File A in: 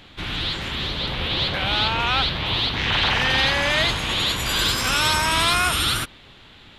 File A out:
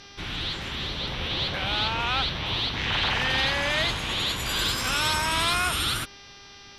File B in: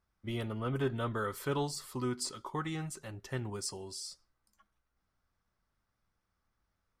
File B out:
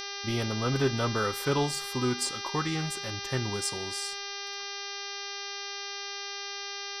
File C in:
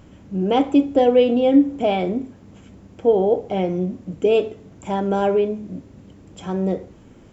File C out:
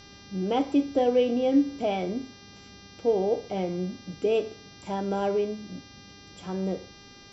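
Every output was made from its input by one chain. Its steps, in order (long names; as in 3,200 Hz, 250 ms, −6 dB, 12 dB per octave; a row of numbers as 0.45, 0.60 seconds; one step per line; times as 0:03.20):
hum with harmonics 400 Hz, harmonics 15, −44 dBFS 0 dB per octave
normalise the peak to −12 dBFS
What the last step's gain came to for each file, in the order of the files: −5.0, +6.0, −7.5 decibels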